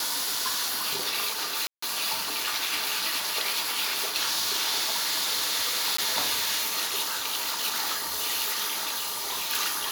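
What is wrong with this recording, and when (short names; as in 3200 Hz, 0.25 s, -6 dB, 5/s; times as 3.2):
1.67–1.82 gap 0.154 s
5.97–5.98 gap 14 ms
8.97–9.5 clipped -27.5 dBFS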